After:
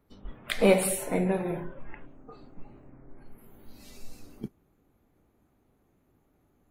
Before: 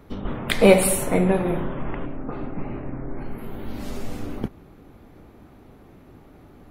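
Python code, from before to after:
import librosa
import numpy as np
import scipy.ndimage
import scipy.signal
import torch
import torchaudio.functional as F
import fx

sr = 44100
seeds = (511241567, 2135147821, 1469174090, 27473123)

y = fx.high_shelf_res(x, sr, hz=3300.0, db=9.0, q=1.5, at=(2.07, 2.9))
y = fx.noise_reduce_blind(y, sr, reduce_db=13)
y = y * 10.0 ** (-7.0 / 20.0)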